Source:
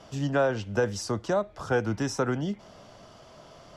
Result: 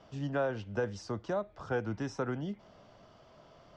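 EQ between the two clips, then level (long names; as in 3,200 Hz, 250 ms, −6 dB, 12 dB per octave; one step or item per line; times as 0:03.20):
high-frequency loss of the air 120 metres
−7.0 dB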